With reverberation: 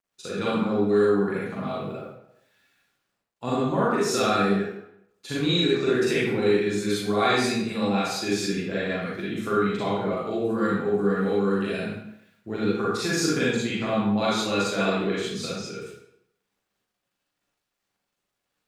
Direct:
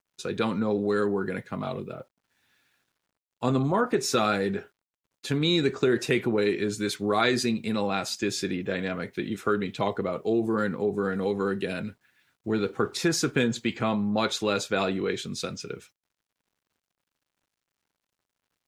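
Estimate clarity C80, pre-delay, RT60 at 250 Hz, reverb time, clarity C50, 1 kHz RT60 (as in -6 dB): 2.0 dB, 35 ms, 0.70 s, 0.80 s, -2.5 dB, 0.80 s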